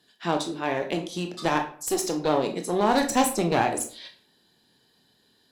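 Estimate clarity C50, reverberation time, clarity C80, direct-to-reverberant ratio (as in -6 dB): 10.5 dB, 0.50 s, 14.0 dB, 4.0 dB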